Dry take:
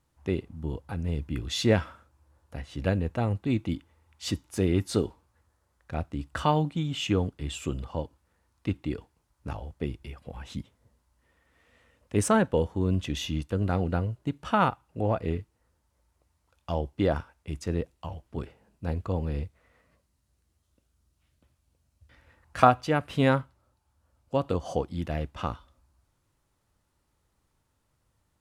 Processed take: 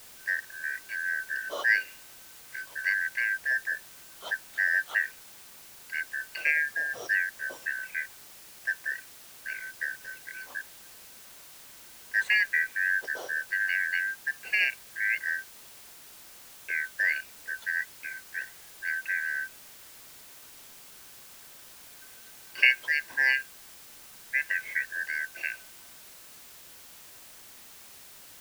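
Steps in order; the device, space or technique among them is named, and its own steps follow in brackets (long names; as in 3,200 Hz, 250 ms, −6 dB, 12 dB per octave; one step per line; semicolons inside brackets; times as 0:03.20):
split-band scrambled radio (band-splitting scrambler in four parts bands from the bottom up 3142; band-pass filter 340–3,000 Hz; white noise bed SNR 17 dB)
level −1.5 dB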